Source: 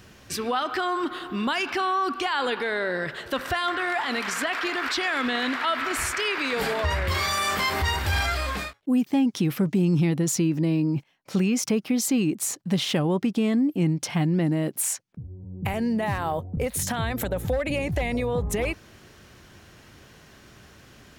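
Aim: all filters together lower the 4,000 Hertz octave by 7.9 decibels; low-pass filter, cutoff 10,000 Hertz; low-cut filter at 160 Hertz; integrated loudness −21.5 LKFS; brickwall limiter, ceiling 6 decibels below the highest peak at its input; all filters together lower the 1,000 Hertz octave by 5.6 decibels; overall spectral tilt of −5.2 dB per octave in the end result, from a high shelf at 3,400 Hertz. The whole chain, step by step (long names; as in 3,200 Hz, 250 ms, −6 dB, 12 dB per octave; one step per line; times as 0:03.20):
high-pass filter 160 Hz
low-pass filter 10,000 Hz
parametric band 1,000 Hz −6.5 dB
high-shelf EQ 3,400 Hz −7 dB
parametric band 4,000 Hz −5.5 dB
level +8 dB
brickwall limiter −11.5 dBFS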